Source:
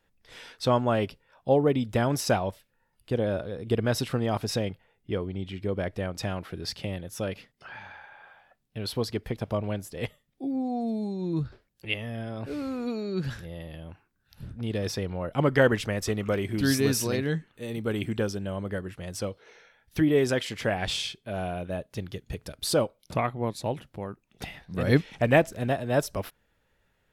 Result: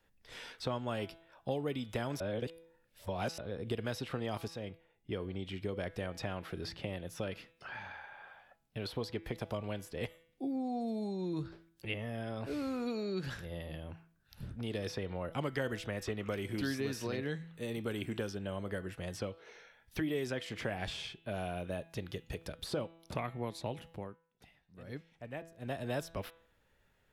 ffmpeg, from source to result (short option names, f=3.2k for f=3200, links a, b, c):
-filter_complex "[0:a]asplit=6[a][b][c][d][e][f];[a]atrim=end=2.202[g];[b]atrim=start=2.198:end=3.382,asetpts=PTS-STARTPTS,areverse[h];[c]atrim=start=3.378:end=4.48,asetpts=PTS-STARTPTS,afade=t=out:st=1.098:d=0.004:c=hsin:silence=0.188365[i];[d]atrim=start=4.48:end=24.18,asetpts=PTS-STARTPTS,afade=t=in:d=0.9:silence=0.188365,afade=t=out:st=19.39:d=0.31:silence=0.0841395[j];[e]atrim=start=24.18:end=25.58,asetpts=PTS-STARTPTS,volume=-21.5dB[k];[f]atrim=start=25.58,asetpts=PTS-STARTPTS,afade=t=in:d=0.31:silence=0.0841395[l];[g][h]acrossfade=d=0.004:c1=hsin:c2=hsin[m];[i][j][k][l]concat=n=4:v=0:a=1[n];[m][n]acrossfade=d=0.004:c1=hsin:c2=hsin,bandreject=f=165.4:t=h:w=4,bandreject=f=330.8:t=h:w=4,bandreject=f=496.2:t=h:w=4,bandreject=f=661.6:t=h:w=4,bandreject=f=827:t=h:w=4,bandreject=f=992.4:t=h:w=4,bandreject=f=1.1578k:t=h:w=4,bandreject=f=1.3232k:t=h:w=4,bandreject=f=1.4886k:t=h:w=4,bandreject=f=1.654k:t=h:w=4,bandreject=f=1.8194k:t=h:w=4,bandreject=f=1.9848k:t=h:w=4,bandreject=f=2.1502k:t=h:w=4,bandreject=f=2.3156k:t=h:w=4,bandreject=f=2.481k:t=h:w=4,bandreject=f=2.6464k:t=h:w=4,bandreject=f=2.8118k:t=h:w=4,bandreject=f=2.9772k:t=h:w=4,bandreject=f=3.1426k:t=h:w=4,bandreject=f=3.308k:t=h:w=4,bandreject=f=3.4734k:t=h:w=4,bandreject=f=3.6388k:t=h:w=4,bandreject=f=3.8042k:t=h:w=4,bandreject=f=3.9696k:t=h:w=4,acrossover=split=320|2000|4100[o][p][q][r];[o]acompressor=threshold=-39dB:ratio=4[s];[p]acompressor=threshold=-37dB:ratio=4[t];[q]acompressor=threshold=-47dB:ratio=4[u];[r]acompressor=threshold=-53dB:ratio=4[v];[s][t][u][v]amix=inputs=4:normalize=0,volume=-1.5dB"